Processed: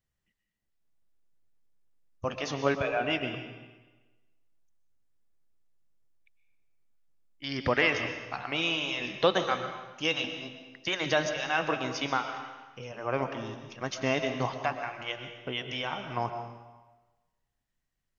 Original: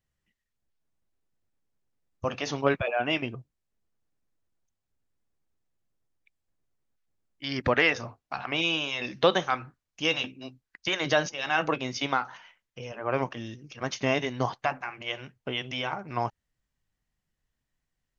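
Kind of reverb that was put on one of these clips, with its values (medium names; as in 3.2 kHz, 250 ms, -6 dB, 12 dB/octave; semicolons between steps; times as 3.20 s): algorithmic reverb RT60 1.2 s, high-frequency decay 0.95×, pre-delay 80 ms, DRR 7 dB; trim -2.5 dB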